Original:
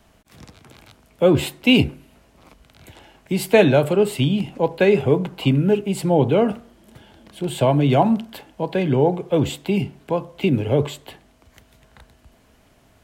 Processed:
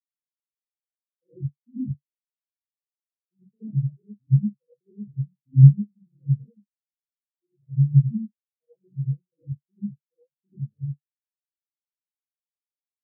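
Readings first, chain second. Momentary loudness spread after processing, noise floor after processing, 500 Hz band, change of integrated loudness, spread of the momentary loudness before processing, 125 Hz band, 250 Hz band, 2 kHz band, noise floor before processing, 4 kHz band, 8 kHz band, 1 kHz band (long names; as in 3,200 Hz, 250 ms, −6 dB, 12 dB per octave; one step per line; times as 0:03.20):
22 LU, below −85 dBFS, below −40 dB, −3.5 dB, 10 LU, +2.5 dB, −9.5 dB, below −40 dB, −56 dBFS, below −40 dB, below −40 dB, below −40 dB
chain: treble cut that deepens with the level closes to 300 Hz, closed at −16.5 dBFS
reverb whose tail is shaped and stops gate 130 ms rising, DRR −7 dB
every bin expanded away from the loudest bin 4 to 1
level −4 dB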